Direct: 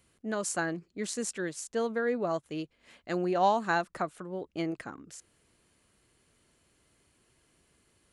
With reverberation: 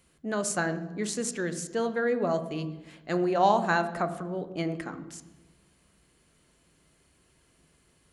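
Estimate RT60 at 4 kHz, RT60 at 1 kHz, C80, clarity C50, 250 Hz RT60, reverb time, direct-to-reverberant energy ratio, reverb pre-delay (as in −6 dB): 0.75 s, 0.95 s, 14.5 dB, 13.0 dB, 1.5 s, 1.1 s, 9.5 dB, 3 ms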